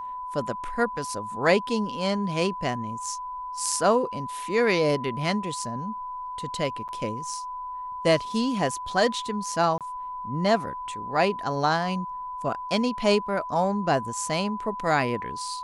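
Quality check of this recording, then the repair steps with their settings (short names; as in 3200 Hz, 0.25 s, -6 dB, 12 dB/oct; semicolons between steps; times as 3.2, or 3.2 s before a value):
tone 1000 Hz -32 dBFS
6.88–6.89 gap 8.7 ms
9.78–9.81 gap 27 ms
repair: notch 1000 Hz, Q 30; interpolate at 6.88, 8.7 ms; interpolate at 9.78, 27 ms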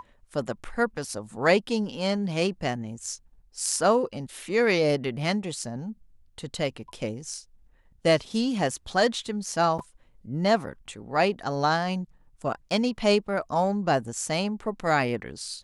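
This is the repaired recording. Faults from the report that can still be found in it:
none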